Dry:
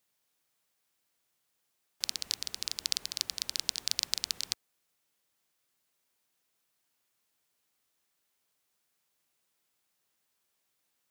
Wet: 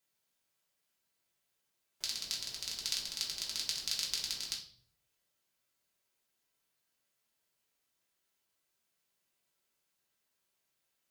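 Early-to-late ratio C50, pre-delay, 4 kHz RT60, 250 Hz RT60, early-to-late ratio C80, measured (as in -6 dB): 7.5 dB, 3 ms, 0.45 s, 0.80 s, 12.5 dB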